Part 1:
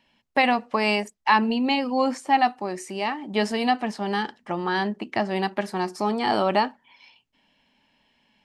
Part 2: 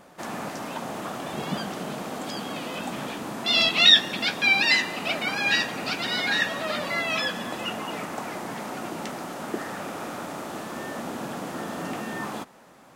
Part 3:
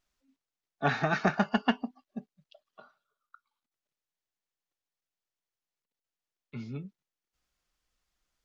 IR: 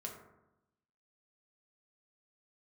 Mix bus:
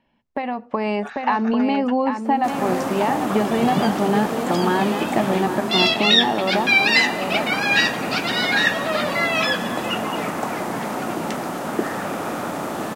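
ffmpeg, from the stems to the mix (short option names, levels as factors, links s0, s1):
-filter_complex "[0:a]lowpass=f=1200:p=1,acompressor=threshold=0.0501:ratio=10,volume=1.41,asplit=2[s0][s1];[s1]volume=0.422[s2];[1:a]dynaudnorm=f=120:g=5:m=1.78,adelay=2250,volume=0.668[s3];[2:a]highpass=900,adelay=200,volume=0.266[s4];[s2]aecho=0:1:794:1[s5];[s0][s3][s4][s5]amix=inputs=4:normalize=0,equalizer=f=4900:w=0.47:g=-4,dynaudnorm=f=160:g=9:m=2.24"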